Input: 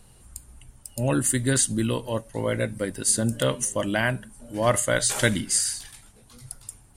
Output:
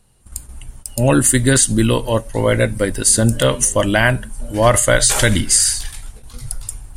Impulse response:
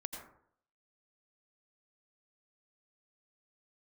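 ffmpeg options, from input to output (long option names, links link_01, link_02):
-af "asubboost=boost=5.5:cutoff=72,agate=range=-15dB:threshold=-46dB:ratio=16:detection=peak,alimiter=level_in=12dB:limit=-1dB:release=50:level=0:latency=1,volume=-1dB"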